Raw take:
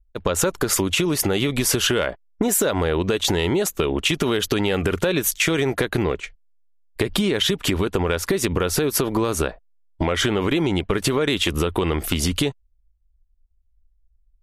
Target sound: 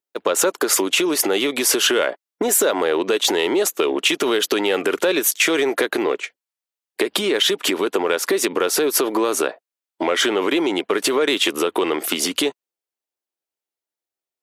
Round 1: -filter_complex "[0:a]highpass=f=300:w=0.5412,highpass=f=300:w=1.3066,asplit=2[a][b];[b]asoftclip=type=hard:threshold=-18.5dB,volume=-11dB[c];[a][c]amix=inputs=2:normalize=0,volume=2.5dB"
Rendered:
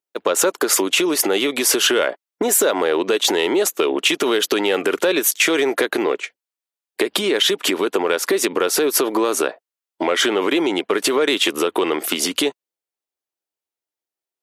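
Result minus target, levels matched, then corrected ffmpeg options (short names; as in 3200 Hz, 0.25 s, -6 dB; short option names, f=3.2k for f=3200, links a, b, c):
hard clip: distortion -7 dB
-filter_complex "[0:a]highpass=f=300:w=0.5412,highpass=f=300:w=1.3066,asplit=2[a][b];[b]asoftclip=type=hard:threshold=-26.5dB,volume=-11dB[c];[a][c]amix=inputs=2:normalize=0,volume=2.5dB"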